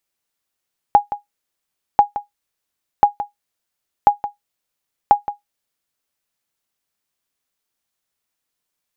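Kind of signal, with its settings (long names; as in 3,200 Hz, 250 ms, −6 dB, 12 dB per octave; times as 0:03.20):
ping with an echo 822 Hz, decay 0.14 s, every 1.04 s, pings 5, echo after 0.17 s, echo −13.5 dB −1 dBFS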